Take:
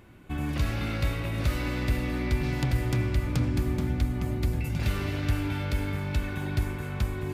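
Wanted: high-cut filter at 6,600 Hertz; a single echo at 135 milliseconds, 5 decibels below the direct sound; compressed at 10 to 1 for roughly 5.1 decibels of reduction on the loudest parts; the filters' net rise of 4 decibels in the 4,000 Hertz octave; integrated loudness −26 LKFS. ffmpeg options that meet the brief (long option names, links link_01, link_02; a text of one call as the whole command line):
ffmpeg -i in.wav -af "lowpass=6600,equalizer=frequency=4000:width_type=o:gain=5.5,acompressor=threshold=-25dB:ratio=10,aecho=1:1:135:0.562,volume=4.5dB" out.wav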